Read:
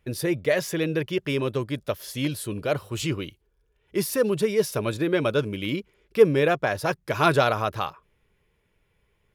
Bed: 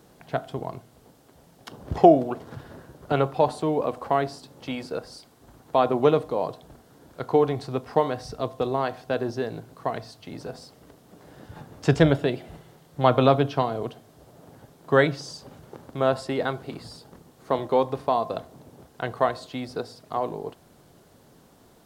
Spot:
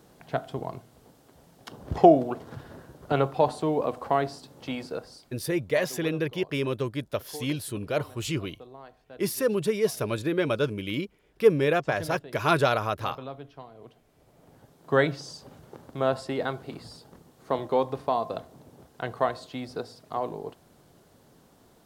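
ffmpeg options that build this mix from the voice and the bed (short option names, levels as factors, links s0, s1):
-filter_complex "[0:a]adelay=5250,volume=0.75[s0];[1:a]volume=6.68,afade=t=out:st=4.77:d=0.99:silence=0.105925,afade=t=in:st=13.74:d=1.29:silence=0.125893[s1];[s0][s1]amix=inputs=2:normalize=0"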